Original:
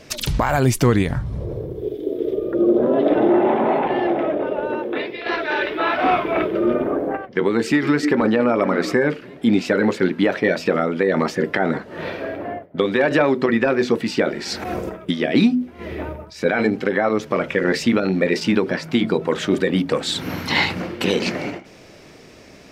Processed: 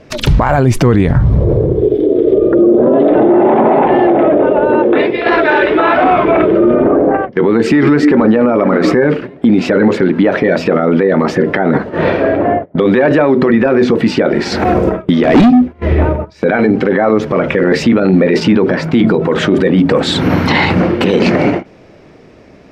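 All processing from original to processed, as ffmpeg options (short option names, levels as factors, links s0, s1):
-filter_complex "[0:a]asettb=1/sr,asplit=3[s0][s1][s2];[s0]atrim=end=15.234[s3];[s1]atrim=start=15.23:end=16.05,asetpts=PTS-STARTPTS,afade=t=in:d=0.004:c=qsin,afade=t=out:st=0.816:d=0.004:c=qsin,volume=9.44,asoftclip=hard,volume=0.106,agate=range=0.447:threshold=0.0178:ratio=16:release=100:detection=peak,asubboost=boost=10.5:cutoff=120[s4];[s2]atrim=start=16.046[s5];[s3][s4]acrossfade=d=0.004:c1=hsin:c2=qsin[s6];[s6][s5]acrossfade=d=0.004:c1=qsin:c2=hsin,lowpass=f=1200:p=1,agate=range=0.251:threshold=0.0178:ratio=16:detection=peak,alimiter=level_in=8.41:limit=0.891:release=50:level=0:latency=1,volume=0.891"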